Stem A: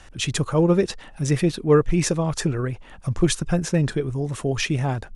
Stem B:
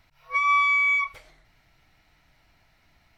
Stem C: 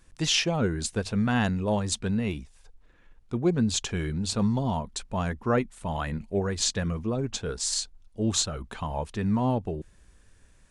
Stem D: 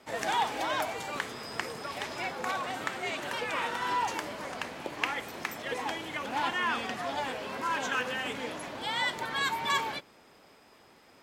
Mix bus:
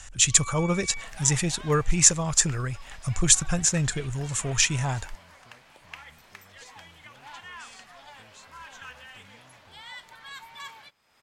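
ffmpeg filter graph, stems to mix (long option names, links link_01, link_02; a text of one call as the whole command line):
ffmpeg -i stem1.wav -i stem2.wav -i stem3.wav -i stem4.wav -filter_complex "[0:a]equalizer=frequency=7200:width_type=o:width=0.5:gain=14.5,volume=1.5dB[link_01];[1:a]volume=-17dB[link_02];[2:a]acompressor=threshold=-32dB:ratio=6,volume=-17dB[link_03];[3:a]acompressor=mode=upward:threshold=-36dB:ratio=2.5,adelay=900,volume=-10.5dB[link_04];[link_01][link_02][link_03][link_04]amix=inputs=4:normalize=0,equalizer=frequency=330:width=0.65:gain=-13.5" out.wav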